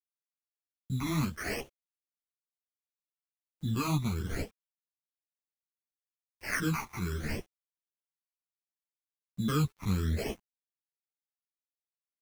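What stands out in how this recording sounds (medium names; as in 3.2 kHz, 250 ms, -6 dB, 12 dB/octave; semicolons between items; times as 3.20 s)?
aliases and images of a low sample rate 3.7 kHz, jitter 0%; phasing stages 12, 0.69 Hz, lowest notch 510–1800 Hz; a quantiser's noise floor 10-bit, dither none; a shimmering, thickened sound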